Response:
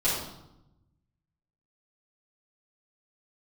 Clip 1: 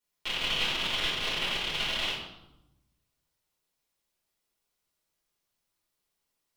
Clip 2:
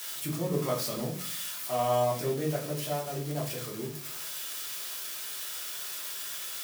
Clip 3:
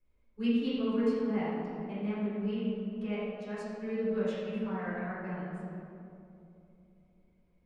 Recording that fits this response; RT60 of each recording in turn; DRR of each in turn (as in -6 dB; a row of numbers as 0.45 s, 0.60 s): 1; 0.90 s, 0.50 s, 2.8 s; -9.5 dB, -3.5 dB, -12.0 dB